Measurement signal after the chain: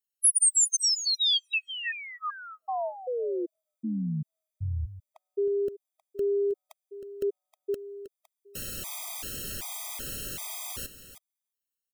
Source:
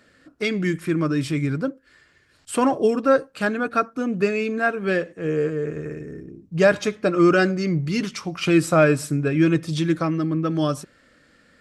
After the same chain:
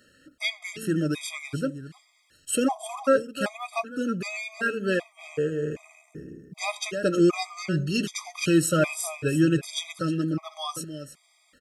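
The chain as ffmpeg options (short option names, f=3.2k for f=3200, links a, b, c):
-af "aecho=1:1:315:0.237,aexciter=amount=2.5:drive=3.8:freq=2.6k,afftfilt=real='re*gt(sin(2*PI*1.3*pts/sr)*(1-2*mod(floor(b*sr/1024/640),2)),0)':imag='im*gt(sin(2*PI*1.3*pts/sr)*(1-2*mod(floor(b*sr/1024/640),2)),0)':win_size=1024:overlap=0.75,volume=-3dB"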